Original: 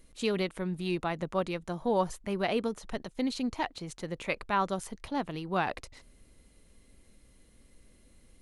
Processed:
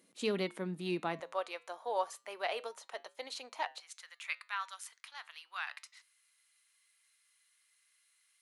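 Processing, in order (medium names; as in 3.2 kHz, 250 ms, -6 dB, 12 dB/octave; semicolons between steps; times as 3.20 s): high-pass 180 Hz 24 dB/octave, from 1.20 s 550 Hz, from 3.80 s 1.3 kHz; flange 0.31 Hz, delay 6 ms, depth 3.2 ms, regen -86%; trim +1 dB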